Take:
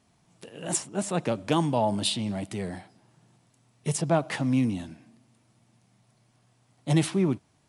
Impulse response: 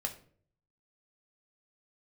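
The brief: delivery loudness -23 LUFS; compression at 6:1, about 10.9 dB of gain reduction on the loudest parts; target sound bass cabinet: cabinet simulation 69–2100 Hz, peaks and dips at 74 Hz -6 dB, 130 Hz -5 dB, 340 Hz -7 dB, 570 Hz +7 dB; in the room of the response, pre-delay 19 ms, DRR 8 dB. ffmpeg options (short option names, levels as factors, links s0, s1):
-filter_complex "[0:a]acompressor=threshold=0.0282:ratio=6,asplit=2[s0][s1];[1:a]atrim=start_sample=2205,adelay=19[s2];[s1][s2]afir=irnorm=-1:irlink=0,volume=0.335[s3];[s0][s3]amix=inputs=2:normalize=0,highpass=f=69:w=0.5412,highpass=f=69:w=1.3066,equalizer=f=74:t=q:w=4:g=-6,equalizer=f=130:t=q:w=4:g=-5,equalizer=f=340:t=q:w=4:g=-7,equalizer=f=570:t=q:w=4:g=7,lowpass=f=2100:w=0.5412,lowpass=f=2100:w=1.3066,volume=4.47"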